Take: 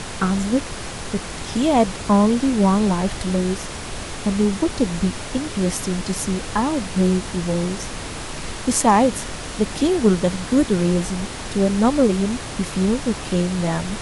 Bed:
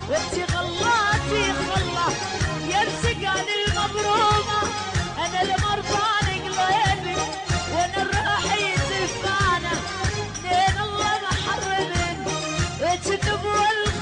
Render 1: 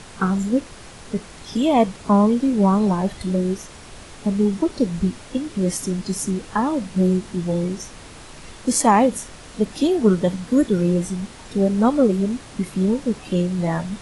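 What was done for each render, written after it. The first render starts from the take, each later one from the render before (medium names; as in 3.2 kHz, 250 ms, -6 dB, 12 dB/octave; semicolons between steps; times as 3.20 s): noise print and reduce 10 dB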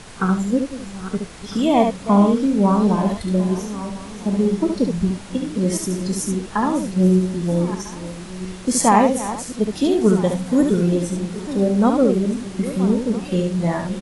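backward echo that repeats 650 ms, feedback 47%, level -13 dB; delay 70 ms -5.5 dB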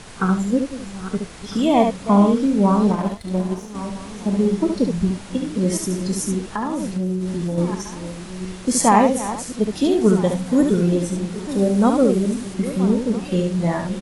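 2.91–3.75 s: power-law waveshaper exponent 1.4; 6.49–7.58 s: compression 12:1, threshold -19 dBFS; 11.49–12.54 s: treble shelf 9.1 kHz +10.5 dB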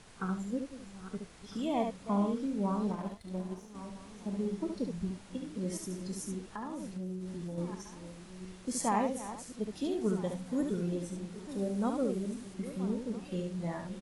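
trim -16 dB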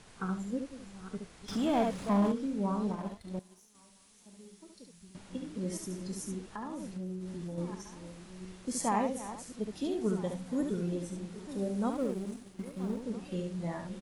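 1.48–2.32 s: power-law waveshaper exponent 0.7; 3.39–5.15 s: pre-emphasis filter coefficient 0.9; 11.92–13.03 s: companding laws mixed up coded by A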